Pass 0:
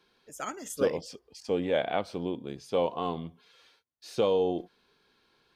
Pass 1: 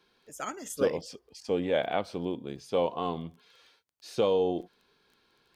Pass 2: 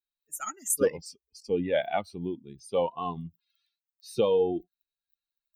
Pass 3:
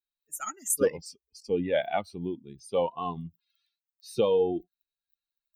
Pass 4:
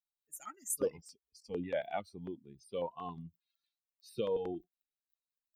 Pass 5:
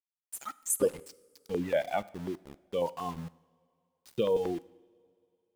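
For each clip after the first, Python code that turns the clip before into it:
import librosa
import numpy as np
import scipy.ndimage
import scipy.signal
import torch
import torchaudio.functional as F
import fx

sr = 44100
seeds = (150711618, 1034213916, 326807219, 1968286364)

y1 = fx.dmg_crackle(x, sr, seeds[0], per_s=11.0, level_db=-48.0)
y2 = fx.bin_expand(y1, sr, power=2.0)
y2 = fx.high_shelf_res(y2, sr, hz=6800.0, db=10.5, q=1.5)
y2 = F.gain(torch.from_numpy(y2), 4.5).numpy()
y3 = y2
y4 = fx.filter_held_notch(y3, sr, hz=11.0, low_hz=360.0, high_hz=6600.0)
y4 = F.gain(torch.from_numpy(y4), -8.5).numpy()
y5 = np.where(np.abs(y4) >= 10.0 ** (-50.0 / 20.0), y4, 0.0)
y5 = fx.rev_double_slope(y5, sr, seeds[1], early_s=0.72, late_s=2.9, knee_db=-19, drr_db=16.5)
y5 = F.gain(torch.from_numpy(y5), 6.5).numpy()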